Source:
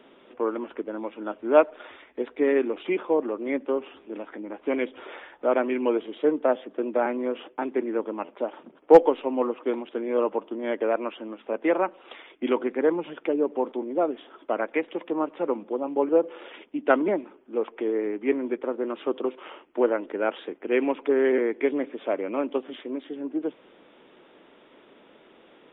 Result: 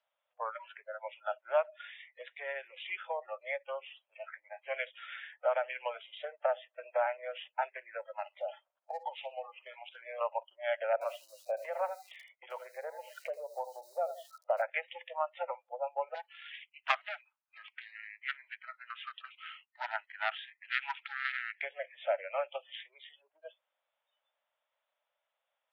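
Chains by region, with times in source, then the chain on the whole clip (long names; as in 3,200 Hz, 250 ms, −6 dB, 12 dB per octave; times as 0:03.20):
0:08.16–0:10.21: downward compressor 20 to 1, threshold −26 dBFS + repeating echo 60 ms, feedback 41%, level −15 dB
0:10.93–0:14.62: spectral tilt −4.5 dB per octave + feedback echo at a low word length 82 ms, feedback 35%, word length 7 bits, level −11.5 dB
0:16.14–0:21.63: high-pass filter 930 Hz 24 dB per octave + highs frequency-modulated by the lows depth 0.38 ms
whole clip: noise reduction from a noise print of the clip's start 28 dB; downward compressor 6 to 1, threshold −24 dBFS; Butterworth high-pass 560 Hz 72 dB per octave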